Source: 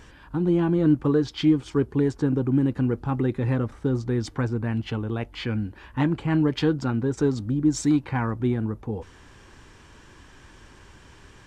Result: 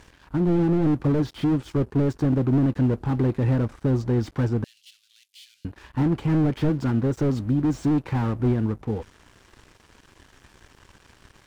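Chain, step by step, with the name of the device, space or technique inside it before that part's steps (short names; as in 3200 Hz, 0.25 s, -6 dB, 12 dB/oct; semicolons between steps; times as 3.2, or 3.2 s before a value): early transistor amplifier (crossover distortion -49.5 dBFS; slew limiter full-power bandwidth 23 Hz); 4.64–5.65 inverse Chebyshev high-pass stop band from 800 Hz, stop band 70 dB; gain +3.5 dB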